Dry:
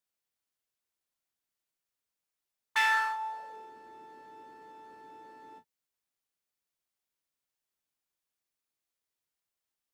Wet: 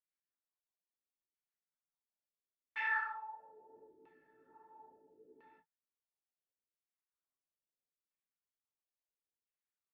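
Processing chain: chorus voices 6, 1.1 Hz, delay 15 ms, depth 4.1 ms; LFO low-pass saw down 0.74 Hz 370–2500 Hz; rotary speaker horn 5 Hz, later 1.2 Hz, at 1.89; gain -8 dB

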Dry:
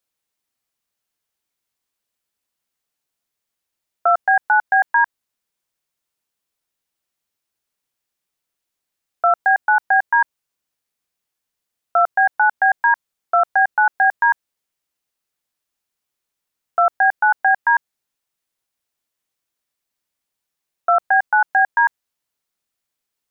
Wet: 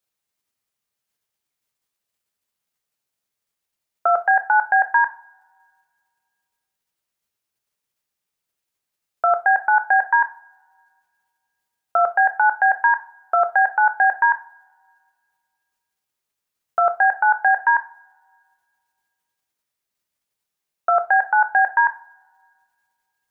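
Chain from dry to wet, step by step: in parallel at -2 dB: level quantiser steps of 9 dB; on the sum: two-slope reverb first 0.31 s, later 2 s, from -27 dB, DRR 7.5 dB; gain -4.5 dB

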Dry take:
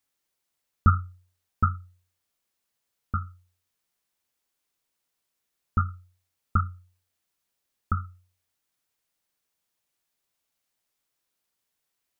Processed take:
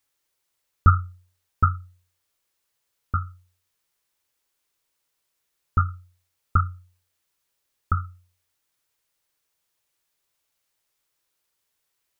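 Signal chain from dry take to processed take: bell 220 Hz -8.5 dB 0.57 oct; notch 720 Hz, Q 12; gain +4 dB

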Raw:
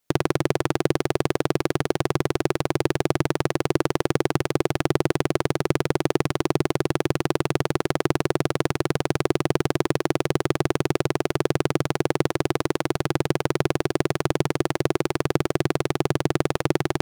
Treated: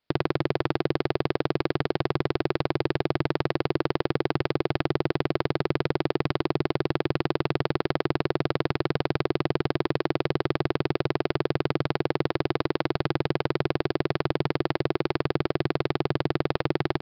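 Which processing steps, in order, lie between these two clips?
in parallel at -2.5 dB: negative-ratio compressor -24 dBFS; on the sum: downsampling 11025 Hz; gain -7 dB

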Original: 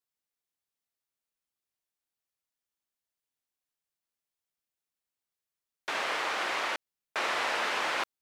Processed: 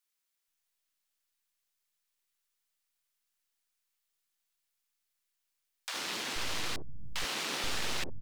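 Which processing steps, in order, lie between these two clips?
tilt shelf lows -3 dB; full-wave rectifier; three bands offset in time highs, mids, lows 60/480 ms, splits 170/650 Hz; mismatched tape noise reduction encoder only; gain -1.5 dB

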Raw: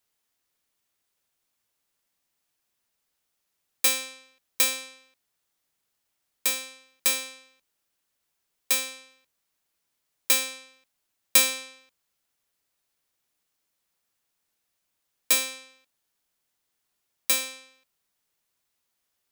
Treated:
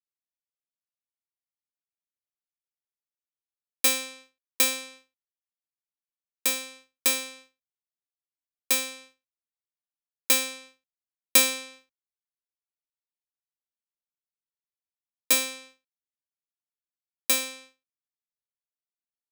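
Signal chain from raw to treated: expander -48 dBFS; low shelf 350 Hz +9 dB

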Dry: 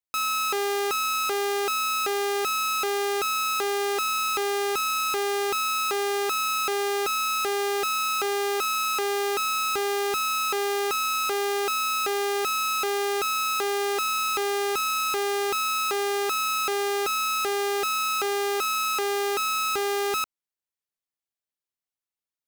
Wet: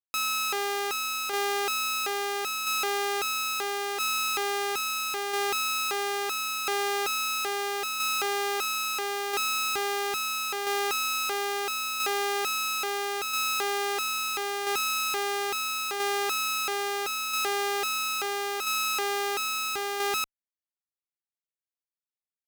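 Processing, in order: added harmonics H 3 -12 dB, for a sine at -21 dBFS; tremolo saw down 0.75 Hz, depth 40%

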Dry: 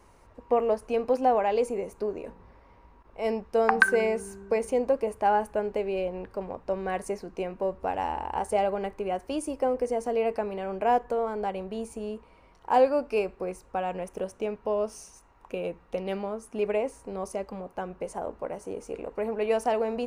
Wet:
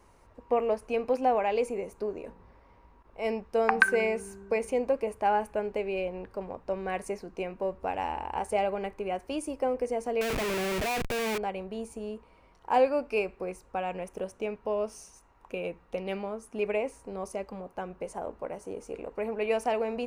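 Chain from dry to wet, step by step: 10.21–11.38 Schmitt trigger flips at -42 dBFS; dynamic EQ 2400 Hz, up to +7 dB, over -53 dBFS, Q 3.2; gain -2.5 dB

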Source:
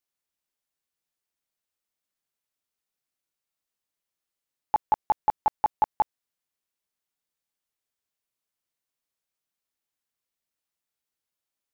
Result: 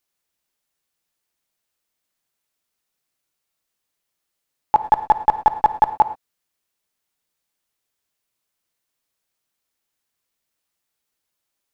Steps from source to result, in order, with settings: non-linear reverb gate 0.14 s flat, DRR 11 dB; 4.82–5.93 running maximum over 3 samples; gain +8 dB

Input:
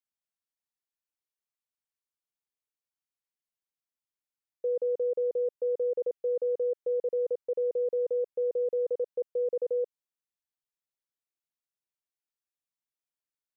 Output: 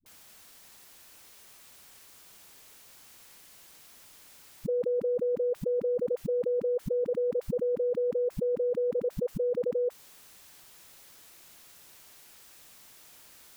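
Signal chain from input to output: dispersion highs, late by 61 ms, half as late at 320 Hz; fast leveller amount 100%

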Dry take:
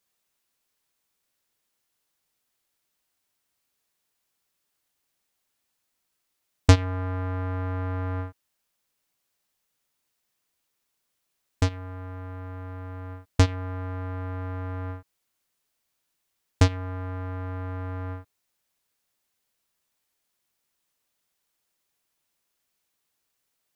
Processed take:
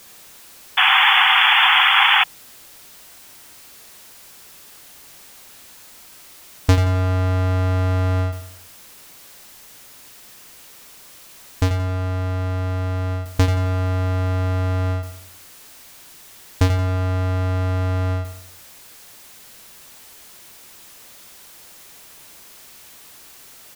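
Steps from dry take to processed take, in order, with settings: power-law curve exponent 0.5; feedback echo 88 ms, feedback 43%, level -9.5 dB; painted sound noise, 0.77–2.24, 740–3500 Hz -11 dBFS; gain -3 dB

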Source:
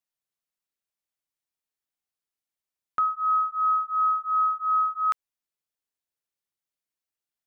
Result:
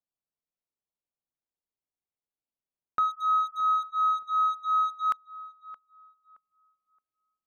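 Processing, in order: Wiener smoothing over 25 samples; 3.83–5.06 low-pass opened by the level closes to 1500 Hz, open at -21.5 dBFS; darkening echo 0.621 s, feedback 29%, low-pass 1500 Hz, level -15 dB

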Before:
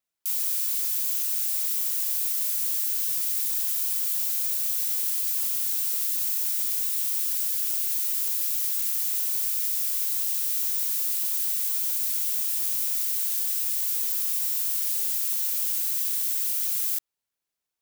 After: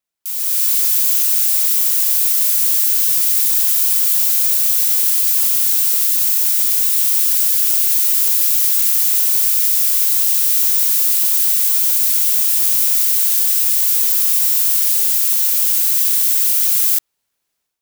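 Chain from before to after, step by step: AGC gain up to 11.5 dB; gain +1.5 dB

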